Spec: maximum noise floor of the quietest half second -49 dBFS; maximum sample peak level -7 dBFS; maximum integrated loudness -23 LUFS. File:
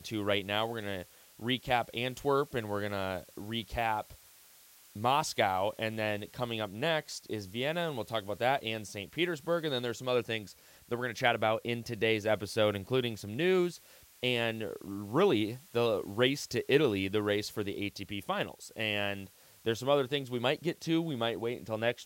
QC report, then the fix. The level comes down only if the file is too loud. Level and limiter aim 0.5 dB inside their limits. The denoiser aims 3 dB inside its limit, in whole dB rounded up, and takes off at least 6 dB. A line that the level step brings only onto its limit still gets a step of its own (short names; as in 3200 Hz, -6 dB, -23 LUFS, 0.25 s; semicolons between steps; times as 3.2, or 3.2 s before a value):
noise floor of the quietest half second -59 dBFS: OK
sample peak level -12.0 dBFS: OK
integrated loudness -32.5 LUFS: OK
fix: none